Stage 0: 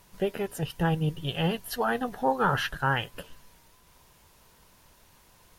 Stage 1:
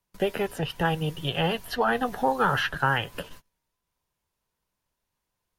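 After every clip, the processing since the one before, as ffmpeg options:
-filter_complex "[0:a]agate=range=0.0316:threshold=0.00501:ratio=16:detection=peak,acrossover=split=100|470|1900|4400[s0][s1][s2][s3][s4];[s0]acompressor=threshold=0.00398:ratio=4[s5];[s1]acompressor=threshold=0.0141:ratio=4[s6];[s2]acompressor=threshold=0.0355:ratio=4[s7];[s3]acompressor=threshold=0.0141:ratio=4[s8];[s4]acompressor=threshold=0.002:ratio=4[s9];[s5][s6][s7][s8][s9]amix=inputs=5:normalize=0,volume=2.11"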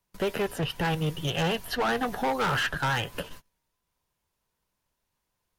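-af "volume=16.8,asoftclip=hard,volume=0.0596,volume=1.19"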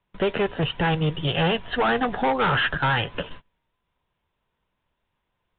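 -af "aresample=8000,aresample=44100,volume=1.78"

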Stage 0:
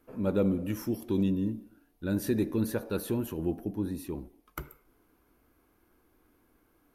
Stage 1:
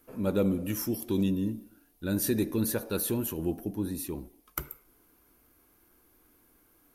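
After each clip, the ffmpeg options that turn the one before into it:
-af "highshelf=f=4100:g=12"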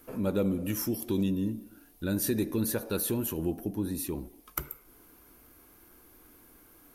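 -af "acompressor=threshold=0.00447:ratio=1.5,volume=2.24"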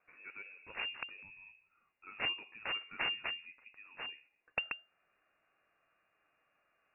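-af "aderivative,aeval=exprs='0.501*(cos(1*acos(clip(val(0)/0.501,-1,1)))-cos(1*PI/2))+0.0794*(cos(8*acos(clip(val(0)/0.501,-1,1)))-cos(8*PI/2))':c=same,lowpass=f=2400:t=q:w=0.5098,lowpass=f=2400:t=q:w=0.6013,lowpass=f=2400:t=q:w=0.9,lowpass=f=2400:t=q:w=2.563,afreqshift=-2800,volume=1.41"

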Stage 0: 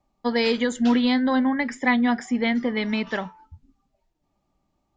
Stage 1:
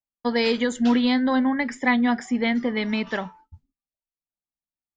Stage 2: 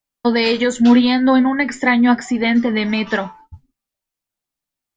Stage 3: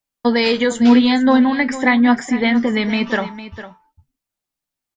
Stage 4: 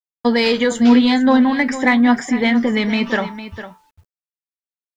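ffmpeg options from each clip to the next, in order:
-af "agate=range=0.0224:threshold=0.00891:ratio=3:detection=peak"
-filter_complex "[0:a]asplit=2[s0][s1];[s1]acompressor=threshold=0.0355:ratio=6,volume=1.12[s2];[s0][s2]amix=inputs=2:normalize=0,flanger=delay=6.5:depth=4.4:regen=56:speed=0.86:shape=triangular,volume=2.51"
-af "aecho=1:1:454:0.2"
-filter_complex "[0:a]asplit=2[s0][s1];[s1]asoftclip=type=tanh:threshold=0.112,volume=0.316[s2];[s0][s2]amix=inputs=2:normalize=0,acrusher=bits=9:mix=0:aa=0.000001,volume=0.891"

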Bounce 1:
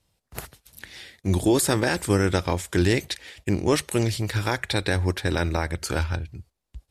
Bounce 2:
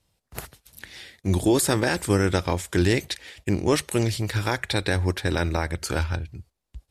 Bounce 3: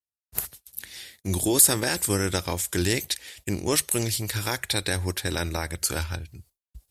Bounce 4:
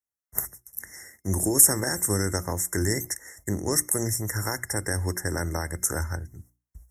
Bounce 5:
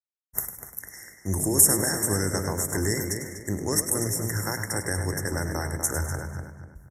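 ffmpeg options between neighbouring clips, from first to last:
-af anull
-af "agate=range=0.0224:threshold=0.00447:ratio=3:detection=peak,aemphasis=mode=production:type=75fm,volume=0.631"
-filter_complex "[0:a]acrossover=split=260|3000[s0][s1][s2];[s1]acompressor=threshold=0.0447:ratio=6[s3];[s0][s3][s2]amix=inputs=3:normalize=0,afftfilt=real='re*(1-between(b*sr/4096,2100,5300))':imag='im*(1-between(b*sr/4096,2100,5300))':win_size=4096:overlap=0.75,bandreject=f=60:t=h:w=6,bandreject=f=120:t=h:w=6,bandreject=f=180:t=h:w=6,bandreject=f=240:t=h:w=6,bandreject=f=300:t=h:w=6,bandreject=f=360:t=h:w=6,volume=1.12"
-filter_complex "[0:a]asplit=2[s0][s1];[s1]asplit=4[s2][s3][s4][s5];[s2]adelay=101,afreqshift=56,volume=0.316[s6];[s3]adelay=202,afreqshift=112,volume=0.114[s7];[s4]adelay=303,afreqshift=168,volume=0.0412[s8];[s5]adelay=404,afreqshift=224,volume=0.0148[s9];[s6][s7][s8][s9]amix=inputs=4:normalize=0[s10];[s0][s10]amix=inputs=2:normalize=0,agate=range=0.0224:threshold=0.00447:ratio=3:detection=peak,asplit=2[s11][s12];[s12]adelay=245,lowpass=f=3500:p=1,volume=0.501,asplit=2[s13][s14];[s14]adelay=245,lowpass=f=3500:p=1,volume=0.34,asplit=2[s15][s16];[s16]adelay=245,lowpass=f=3500:p=1,volume=0.34,asplit=2[s17][s18];[s18]adelay=245,lowpass=f=3500:p=1,volume=0.34[s19];[s13][s15][s17][s19]amix=inputs=4:normalize=0[s20];[s11][s20]amix=inputs=2:normalize=0,volume=0.891"

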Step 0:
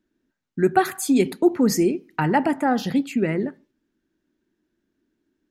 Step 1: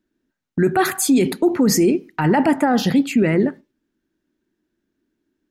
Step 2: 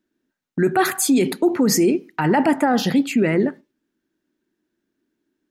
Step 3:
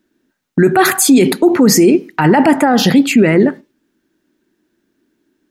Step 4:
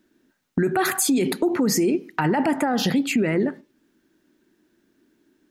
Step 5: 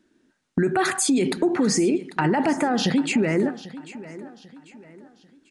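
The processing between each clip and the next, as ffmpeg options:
-af "agate=range=0.398:threshold=0.01:ratio=16:detection=peak,alimiter=limit=0.15:level=0:latency=1:release=14,volume=2.51"
-af "lowshelf=f=100:g=-11.5"
-af "alimiter=level_in=3.98:limit=0.891:release=50:level=0:latency=1,volume=0.891"
-af "acompressor=threshold=0.0631:ratio=2.5"
-af "aecho=1:1:793|1586|2379:0.141|0.0537|0.0204,aresample=22050,aresample=44100"

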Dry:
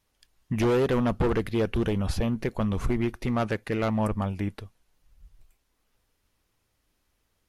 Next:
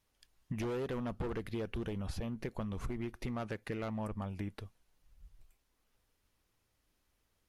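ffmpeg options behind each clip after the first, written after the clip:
-af "acompressor=threshold=0.0282:ratio=6,volume=0.596"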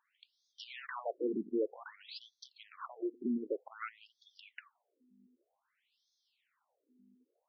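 -af "aeval=exprs='val(0)+0.00126*(sin(2*PI*50*n/s)+sin(2*PI*2*50*n/s)/2+sin(2*PI*3*50*n/s)/3+sin(2*PI*4*50*n/s)/4+sin(2*PI*5*50*n/s)/5)':c=same,afftfilt=real='re*between(b*sr/1024,290*pow(4700/290,0.5+0.5*sin(2*PI*0.53*pts/sr))/1.41,290*pow(4700/290,0.5+0.5*sin(2*PI*0.53*pts/sr))*1.41)':imag='im*between(b*sr/1024,290*pow(4700/290,0.5+0.5*sin(2*PI*0.53*pts/sr))/1.41,290*pow(4700/290,0.5+0.5*sin(2*PI*0.53*pts/sr))*1.41)':win_size=1024:overlap=0.75,volume=2.37"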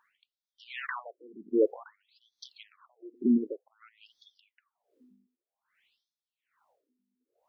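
-filter_complex "[0:a]asplit=2[s0][s1];[s1]adynamicsmooth=sensitivity=2.5:basefreq=5300,volume=0.944[s2];[s0][s2]amix=inputs=2:normalize=0,aeval=exprs='val(0)*pow(10,-29*(0.5-0.5*cos(2*PI*1.2*n/s))/20)':c=same,volume=1.88"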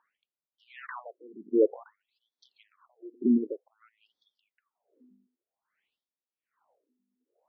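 -af "bandpass=f=390:t=q:w=0.58:csg=0,volume=1.26"

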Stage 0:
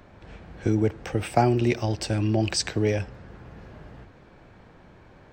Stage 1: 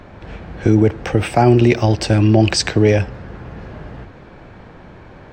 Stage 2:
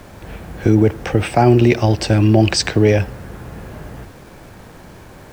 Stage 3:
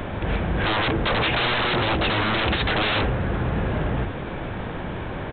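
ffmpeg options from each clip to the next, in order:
-af "highshelf=f=6700:g=-9.5,alimiter=level_in=4.22:limit=0.891:release=50:level=0:latency=1,volume=0.891"
-af "acrusher=bits=7:mix=0:aa=0.000001"
-af "aeval=exprs='0.841*(cos(1*acos(clip(val(0)/0.841,-1,1)))-cos(1*PI/2))+0.422*(cos(5*acos(clip(val(0)/0.841,-1,1)))-cos(5*PI/2))':c=same,aresample=8000,aeval=exprs='0.178*(abs(mod(val(0)/0.178+3,4)-2)-1)':c=same,aresample=44100,volume=0.841"

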